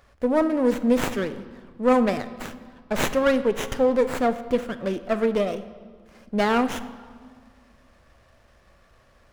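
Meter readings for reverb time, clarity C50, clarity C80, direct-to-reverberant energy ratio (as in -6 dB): 1.8 s, 13.0 dB, 15.0 dB, 11.5 dB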